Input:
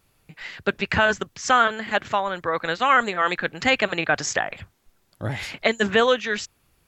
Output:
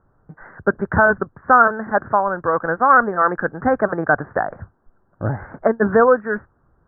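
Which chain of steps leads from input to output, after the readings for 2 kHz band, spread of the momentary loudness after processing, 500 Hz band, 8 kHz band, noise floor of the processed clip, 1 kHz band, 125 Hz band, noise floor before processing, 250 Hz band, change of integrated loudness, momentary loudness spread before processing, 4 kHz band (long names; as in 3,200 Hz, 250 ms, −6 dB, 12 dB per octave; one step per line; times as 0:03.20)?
+2.0 dB, 12 LU, +6.0 dB, below −40 dB, −62 dBFS, +6.0 dB, +6.0 dB, −66 dBFS, +6.0 dB, +4.0 dB, 12 LU, below −40 dB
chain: Butterworth low-pass 1,600 Hz 72 dB per octave
level +6 dB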